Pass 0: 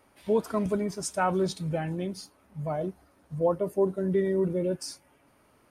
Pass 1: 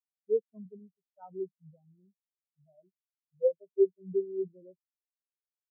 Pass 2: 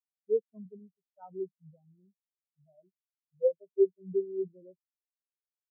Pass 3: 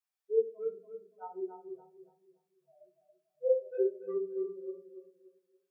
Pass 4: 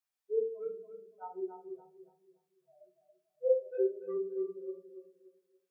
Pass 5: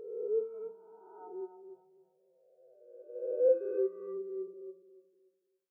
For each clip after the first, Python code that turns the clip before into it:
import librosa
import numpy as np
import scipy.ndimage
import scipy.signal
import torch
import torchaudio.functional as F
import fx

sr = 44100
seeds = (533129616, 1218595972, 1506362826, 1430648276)

y1 = fx.high_shelf(x, sr, hz=3800.0, db=-8.5)
y1 = fx.spectral_expand(y1, sr, expansion=4.0)
y2 = y1
y3 = scipy.signal.sosfilt(scipy.signal.butter(2, 690.0, 'highpass', fs=sr, output='sos'), y2)
y3 = fx.echo_tape(y3, sr, ms=285, feedback_pct=35, wet_db=-5.0, lp_hz=1100.0, drive_db=28.0, wow_cents=13)
y3 = fx.room_shoebox(y3, sr, seeds[0], volume_m3=170.0, walls='furnished', distance_m=3.6)
y3 = y3 * librosa.db_to_amplitude(-2.5)
y4 = fx.hum_notches(y3, sr, base_hz=50, count=9)
y5 = fx.spec_swells(y4, sr, rise_s=1.85)
y5 = fx.upward_expand(y5, sr, threshold_db=-44.0, expansion=1.5)